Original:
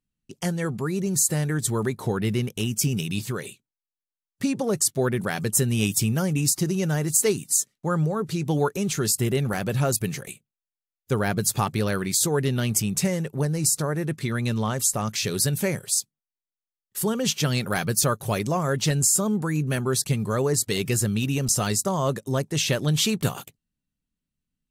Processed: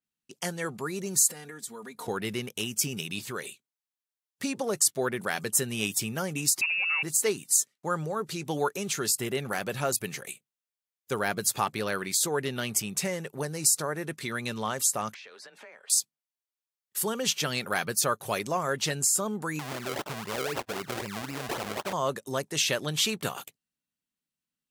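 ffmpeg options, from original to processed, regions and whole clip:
ffmpeg -i in.wav -filter_complex "[0:a]asettb=1/sr,asplit=3[link_01][link_02][link_03];[link_01]atrim=end=1.284[link_04];[link_02]atrim=start=1.28:end=2.08,asetpts=PTS-STARTPTS,afade=type=in:duration=0.004:curve=qsin,afade=type=out:start_time=0.796:duration=0.004:curve=qsin,aecho=1:1:4.2:0.82,atrim=end_sample=35280,acompressor=threshold=-33dB:ratio=12:attack=3.2:release=140:knee=1:detection=peak[link_05];[link_03]atrim=start=2.076[link_06];[link_04][link_05]acrossfade=duration=0.004:curve1=hsin:curve2=qsin[link_07];[link_07][link_06]acrossfade=duration=0.004:curve1=qsin:curve2=hsin,asettb=1/sr,asplit=3[link_08][link_09][link_10];[link_08]atrim=end=6.614[link_11];[link_09]atrim=start=6.61:end=7.03,asetpts=PTS-STARTPTS,afade=type=in:duration=0.004:curve=qsin,afade=type=out:start_time=0.416:duration=0.004:curve=qsin,aeval=exprs='if(lt(val(0),0),0.447*val(0),val(0))':channel_layout=same,lowpass=frequency=2400:width_type=q:width=0.5098,lowpass=frequency=2400:width_type=q:width=0.6013,lowpass=frequency=2400:width_type=q:width=0.9,lowpass=frequency=2400:width_type=q:width=2.563,afreqshift=-2800[link_12];[link_10]atrim=start=7.026[link_13];[link_11][link_12]acrossfade=duration=0.004:curve1=hsin:curve2=qsin[link_14];[link_14][link_13]acrossfade=duration=0.004:curve1=qsin:curve2=hsin,asettb=1/sr,asplit=3[link_15][link_16][link_17];[link_15]atrim=end=15.144[link_18];[link_16]atrim=start=15.14:end=15.9,asetpts=PTS-STARTPTS,afade=type=in:duration=0.004:curve=qsin,afade=type=out:start_time=0.756:duration=0.004:curve=qsin,highpass=660,lowpass=2000,acompressor=threshold=-42dB:ratio=8:attack=3.2:release=140:knee=1:detection=peak,afreqshift=24[link_19];[link_17]atrim=start=15.896[link_20];[link_18][link_19]acrossfade=duration=0.004:curve1=hsin:curve2=qsin[link_21];[link_21][link_20]acrossfade=duration=0.004:curve1=qsin:curve2=hsin,asettb=1/sr,asplit=3[link_22][link_23][link_24];[link_22]atrim=end=19.594[link_25];[link_23]atrim=start=19.59:end=21.93,asetpts=PTS-STARTPTS,afade=type=in:duration=0.004:curve=qsin,afade=type=out:start_time=2.336:duration=0.004:curve=qsin,acrusher=samples=34:mix=1:aa=0.000001:lfo=1:lforange=34:lforate=3.9,acompressor=threshold=-27dB:ratio=2:attack=3.2:release=140:knee=1:detection=peak[link_26];[link_24]atrim=start=21.926[link_27];[link_25][link_26]acrossfade=duration=0.004:curve1=hsin:curve2=qsin[link_28];[link_28][link_27]acrossfade=duration=0.004:curve1=qsin:curve2=hsin,highpass=frequency=620:poles=1,adynamicequalizer=threshold=0.01:dfrequency=3700:dqfactor=0.7:tfrequency=3700:tqfactor=0.7:attack=5:release=100:ratio=0.375:range=3:mode=cutabove:tftype=highshelf" out.wav

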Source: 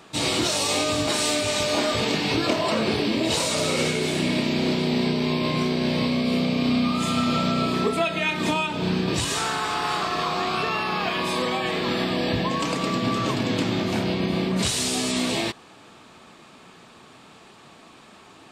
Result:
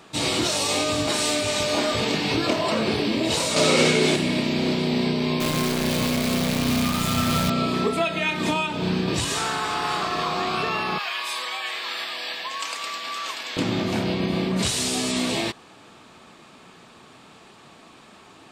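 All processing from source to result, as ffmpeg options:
ffmpeg -i in.wav -filter_complex "[0:a]asettb=1/sr,asplit=3[link_01][link_02][link_03];[link_01]atrim=end=3.564[link_04];[link_02]atrim=start=3.56:end=4.16,asetpts=PTS-STARTPTS,afade=type=in:duration=0.004:curve=qsin,afade=type=out:start_time=0.596:duration=0.004:curve=qsin,highpass=150,acontrast=50,equalizer=frequency=12000:width=1.4:gain=-7.5[link_05];[link_03]atrim=start=4.156[link_06];[link_04][link_05]acrossfade=duration=0.004:curve1=hsin:curve2=qsin[link_07];[link_07][link_06]acrossfade=duration=0.004:curve1=qsin:curve2=hsin,asettb=1/sr,asplit=3[link_08][link_09][link_10];[link_08]atrim=end=5.404[link_11];[link_09]atrim=start=5.4:end=7.5,asetpts=PTS-STARTPTS,afade=type=in:duration=0.004:curve=qsin,afade=type=out:start_time=2.096:duration=0.004:curve=qsin,asubboost=boost=7:cutoff=120,acrusher=bits=5:dc=4:mix=0:aa=0.000001[link_12];[link_10]atrim=start=7.496[link_13];[link_11][link_12]acrossfade=duration=0.004:curve1=hsin:curve2=qsin[link_14];[link_14][link_13]acrossfade=duration=0.004:curve1=qsin:curve2=hsin,asettb=1/sr,asplit=3[link_15][link_16][link_17];[link_15]atrim=end=10.984[link_18];[link_16]atrim=start=10.98:end=13.57,asetpts=PTS-STARTPTS,afade=type=in:duration=0.004:curve=qsin,afade=type=out:start_time=2.586:duration=0.004:curve=qsin,highpass=1200,highshelf=frequency=11000:gain=5.5[link_19];[link_17]atrim=start=13.566[link_20];[link_18][link_19]acrossfade=duration=0.004:curve1=hsin:curve2=qsin[link_21];[link_21][link_20]acrossfade=duration=0.004:curve1=qsin:curve2=hsin" out.wav

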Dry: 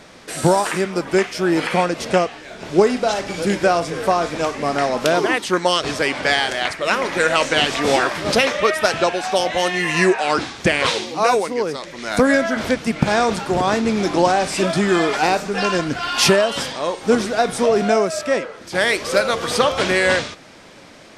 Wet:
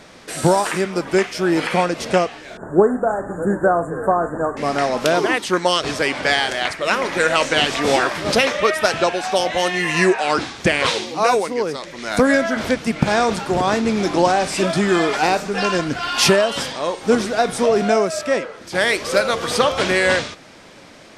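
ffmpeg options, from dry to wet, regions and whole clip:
ffmpeg -i in.wav -filter_complex "[0:a]asettb=1/sr,asplit=3[link_01][link_02][link_03];[link_01]atrim=end=2.574[link_04];[link_02]atrim=start=2.57:end=4.57,asetpts=PTS-STARTPTS,afade=type=in:duration=0.004:curve=qsin,afade=type=out:start_time=1.996:duration=0.004:curve=qsin,asuperstop=centerf=3600:order=20:qfactor=0.67,aemphasis=mode=reproduction:type=50fm[link_05];[link_03]atrim=start=4.566[link_06];[link_04][link_05]acrossfade=duration=0.004:curve1=hsin:curve2=qsin[link_07];[link_07][link_06]acrossfade=duration=0.004:curve1=qsin:curve2=hsin" out.wav

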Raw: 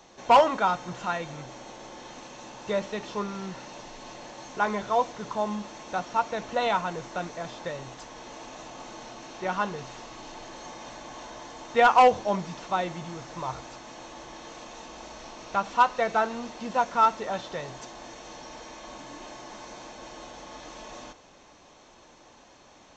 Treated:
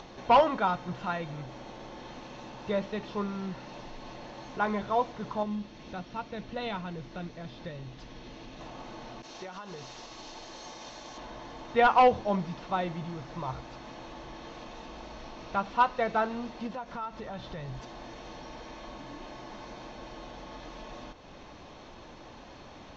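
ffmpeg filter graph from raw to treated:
ffmpeg -i in.wav -filter_complex "[0:a]asettb=1/sr,asplit=3[link_01][link_02][link_03];[link_01]atrim=end=5.434[link_04];[link_02]atrim=start=5.43:end=8.61,asetpts=PTS-STARTPTS,afade=type=in:duration=0.004:curve=qsin,afade=type=out:start_time=3.176:duration=0.004:curve=qsin,lowpass=5700,equalizer=frequency=910:width=0.6:gain=-9.5[link_05];[link_03]atrim=start=8.606[link_06];[link_04][link_05]acrossfade=duration=0.004:curve1=hsin:curve2=qsin[link_07];[link_07][link_06]acrossfade=duration=0.004:curve1=qsin:curve2=hsin,asettb=1/sr,asplit=3[link_08][link_09][link_10];[link_08]atrim=end=9.224[link_11];[link_09]atrim=start=9.22:end=11.18,asetpts=PTS-STARTPTS,afade=type=in:duration=0.004:curve=qsin,afade=type=out:start_time=1.956:duration=0.004:curve=qsin,agate=range=-33dB:threshold=-40dB:ratio=3:release=100:detection=peak,bass=frequency=250:gain=-7,treble=frequency=4000:gain=14,acompressor=threshold=-35dB:ratio=10:attack=3.2:release=140:knee=1:detection=peak[link_12];[link_10]atrim=start=11.176[link_13];[link_11][link_12]acrossfade=duration=0.004:curve1=hsin:curve2=qsin[link_14];[link_14][link_13]acrossfade=duration=0.004:curve1=qsin:curve2=hsin,asettb=1/sr,asplit=3[link_15][link_16][link_17];[link_15]atrim=end=16.674[link_18];[link_16]atrim=start=16.67:end=17.8,asetpts=PTS-STARTPTS,afade=type=in:duration=0.004:curve=qsin,afade=type=out:start_time=1.126:duration=0.004:curve=qsin,asubboost=boost=6:cutoff=210,acompressor=threshold=-36dB:ratio=2.5:attack=3.2:release=140:knee=1:detection=peak[link_19];[link_17]atrim=start=17.796[link_20];[link_18][link_19]acrossfade=duration=0.004:curve1=hsin:curve2=qsin[link_21];[link_21][link_20]acrossfade=duration=0.004:curve1=qsin:curve2=hsin,lowpass=frequency=5000:width=0.5412,lowpass=frequency=5000:width=1.3066,lowshelf=frequency=230:gain=9,acompressor=mode=upward:threshold=-35dB:ratio=2.5,volume=-4dB" out.wav

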